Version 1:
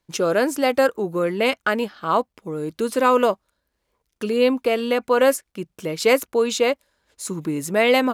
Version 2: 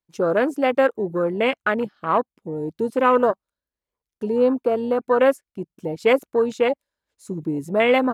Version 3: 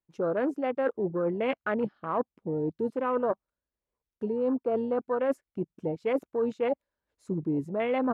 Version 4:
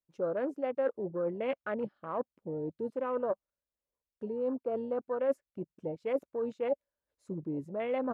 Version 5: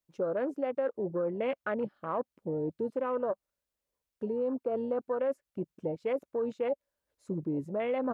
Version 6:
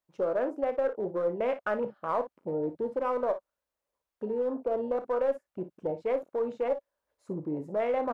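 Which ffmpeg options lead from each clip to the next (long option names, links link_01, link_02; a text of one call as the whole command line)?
ffmpeg -i in.wav -af "afwtdn=0.0562" out.wav
ffmpeg -i in.wav -af "lowpass=frequency=1300:poles=1,areverse,acompressor=threshold=-25dB:ratio=6,areverse" out.wav
ffmpeg -i in.wav -af "equalizer=frequency=560:width_type=o:width=0.31:gain=7,volume=-7.5dB" out.wav
ffmpeg -i in.wav -af "acompressor=threshold=-32dB:ratio=6,volume=4.5dB" out.wav
ffmpeg -i in.wav -filter_complex "[0:a]equalizer=frequency=890:width=0.56:gain=10,asplit=2[link_01][link_02];[link_02]aeval=exprs='clip(val(0),-1,0.075)':channel_layout=same,volume=-5.5dB[link_03];[link_01][link_03]amix=inputs=2:normalize=0,aecho=1:1:33|56:0.237|0.224,volume=-8dB" out.wav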